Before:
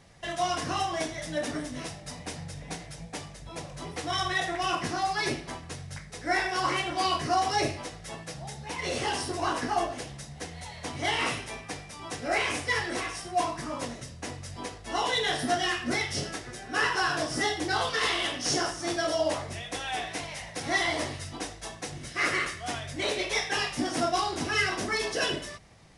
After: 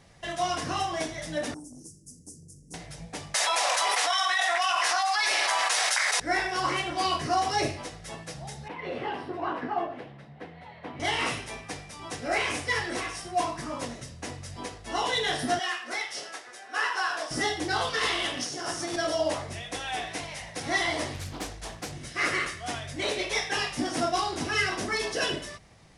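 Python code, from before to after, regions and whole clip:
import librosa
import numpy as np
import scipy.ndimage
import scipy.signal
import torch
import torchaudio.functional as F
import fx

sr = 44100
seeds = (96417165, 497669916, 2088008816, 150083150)

y = fx.chain(x, sr, fx.cheby2_bandstop(low_hz=640.0, high_hz=3800.0, order=4, stop_db=40),
    fx.low_shelf(hz=290.0, db=-12.0),
    fx.transformer_sat(knee_hz=500.0), at=(1.54, 2.74))
y = fx.chain(y, sr, fx.highpass(hz=730.0, slope=24),
    fx.env_flatten(amount_pct=100), at=(3.34, 6.2))
y = fx.chain(y, sr, fx.highpass(hz=160.0, slope=12),
    fx.air_absorb(metres=470.0), at=(8.68, 11.0))
y = fx.chain(y, sr, fx.highpass(hz=830.0, slope=12),
    fx.tilt_shelf(db=4.0, hz=1300.0), at=(15.59, 17.31))
y = fx.chain(y, sr, fx.highpass(hz=97.0, slope=12),
    fx.high_shelf(hz=10000.0, db=3.5),
    fx.over_compress(threshold_db=-33.0, ratio=-1.0), at=(18.37, 18.96))
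y = fx.chain(y, sr, fx.low_shelf(hz=68.0, db=10.5),
    fx.doppler_dist(depth_ms=0.67), at=(21.14, 21.92))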